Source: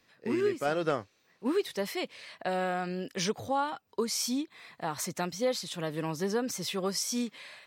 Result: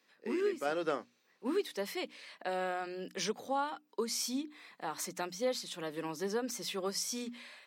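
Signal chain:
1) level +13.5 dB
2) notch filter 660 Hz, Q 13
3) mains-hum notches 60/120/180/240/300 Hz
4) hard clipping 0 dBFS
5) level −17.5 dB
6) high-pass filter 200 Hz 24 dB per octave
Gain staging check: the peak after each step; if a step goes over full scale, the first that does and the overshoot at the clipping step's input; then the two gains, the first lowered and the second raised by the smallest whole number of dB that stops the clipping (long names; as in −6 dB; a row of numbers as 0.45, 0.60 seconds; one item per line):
−3.0, −2.5, −2.5, −2.5, −20.0, −20.5 dBFS
no step passes full scale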